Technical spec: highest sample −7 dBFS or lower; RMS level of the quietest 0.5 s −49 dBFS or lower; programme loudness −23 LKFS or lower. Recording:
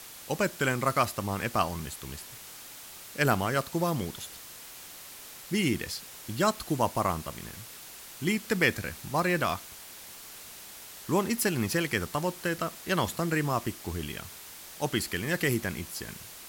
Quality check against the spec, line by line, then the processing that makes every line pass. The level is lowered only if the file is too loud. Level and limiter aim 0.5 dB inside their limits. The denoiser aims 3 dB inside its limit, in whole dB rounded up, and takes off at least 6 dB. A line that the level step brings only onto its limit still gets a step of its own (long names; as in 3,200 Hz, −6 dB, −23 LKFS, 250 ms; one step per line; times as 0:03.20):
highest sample −9.0 dBFS: in spec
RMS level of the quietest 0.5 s −46 dBFS: out of spec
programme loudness −30.0 LKFS: in spec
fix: broadband denoise 6 dB, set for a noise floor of −46 dBFS